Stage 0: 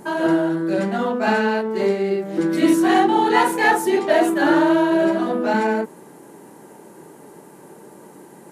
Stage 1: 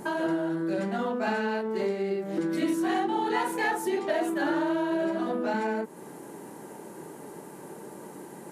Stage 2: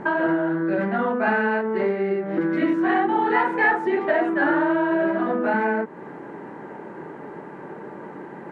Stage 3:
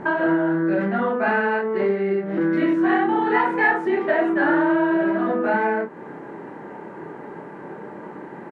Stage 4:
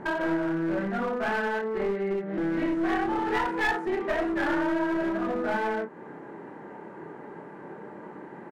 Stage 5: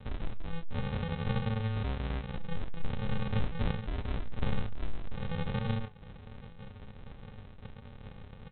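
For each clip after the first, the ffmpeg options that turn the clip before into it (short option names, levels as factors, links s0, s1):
-af "acompressor=threshold=0.0316:ratio=2.5"
-af "lowpass=f=1800:t=q:w=1.7,volume=1.88"
-filter_complex "[0:a]asplit=2[s0][s1];[s1]adelay=30,volume=0.447[s2];[s0][s2]amix=inputs=2:normalize=0"
-af "aeval=exprs='clip(val(0),-1,0.0944)':c=same,volume=0.501"
-af "aresample=8000,acrusher=samples=24:mix=1:aa=0.000001,aresample=44100,flanger=delay=8.7:depth=1.1:regen=74:speed=1.4:shape=sinusoidal"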